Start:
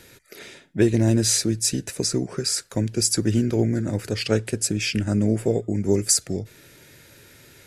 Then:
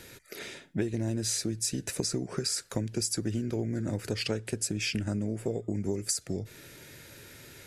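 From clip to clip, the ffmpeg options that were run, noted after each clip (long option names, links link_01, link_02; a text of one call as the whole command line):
ffmpeg -i in.wav -af "acompressor=threshold=-27dB:ratio=10" out.wav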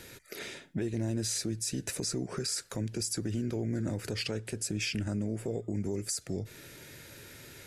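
ffmpeg -i in.wav -af "alimiter=limit=-23.5dB:level=0:latency=1:release=25" out.wav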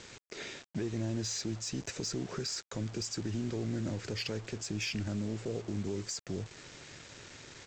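ffmpeg -i in.wav -af "aresample=16000,acrusher=bits=7:mix=0:aa=0.000001,aresample=44100,aeval=exprs='0.075*(cos(1*acos(clip(val(0)/0.075,-1,1)))-cos(1*PI/2))+0.00237*(cos(5*acos(clip(val(0)/0.075,-1,1)))-cos(5*PI/2))':channel_layout=same,volume=-2.5dB" out.wav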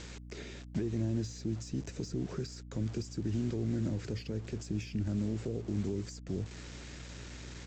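ffmpeg -i in.wav -filter_complex "[0:a]acrossover=split=410[link_01][link_02];[link_02]acompressor=threshold=-50dB:ratio=10[link_03];[link_01][link_03]amix=inputs=2:normalize=0,aeval=exprs='val(0)+0.00355*(sin(2*PI*60*n/s)+sin(2*PI*2*60*n/s)/2+sin(2*PI*3*60*n/s)/3+sin(2*PI*4*60*n/s)/4+sin(2*PI*5*60*n/s)/5)':channel_layout=same,volume=2.5dB" out.wav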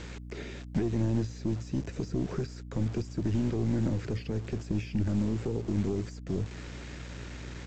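ffmpeg -i in.wav -filter_complex "[0:a]acrossover=split=3100[link_01][link_02];[link_02]acompressor=threshold=-59dB:ratio=4:attack=1:release=60[link_03];[link_01][link_03]amix=inputs=2:normalize=0,aeval=exprs='0.0708*(cos(1*acos(clip(val(0)/0.0708,-1,1)))-cos(1*PI/2))+0.00631*(cos(4*acos(clip(val(0)/0.0708,-1,1)))-cos(4*PI/2))':channel_layout=same,volume=5dB" out.wav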